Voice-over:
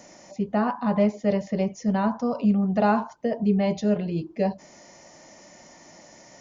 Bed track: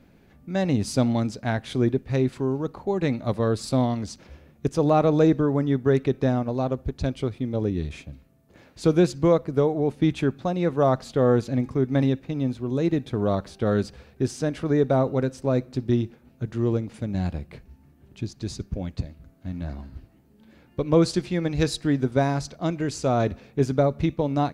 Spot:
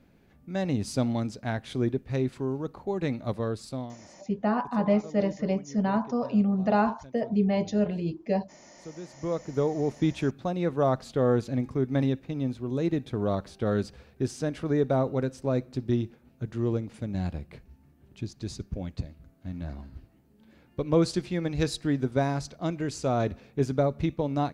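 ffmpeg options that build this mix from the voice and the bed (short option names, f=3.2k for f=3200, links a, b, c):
-filter_complex "[0:a]adelay=3900,volume=-2.5dB[a];[1:a]volume=14dB,afade=t=out:st=3.29:d=0.72:silence=0.125893,afade=t=in:st=9.08:d=0.62:silence=0.112202[b];[a][b]amix=inputs=2:normalize=0"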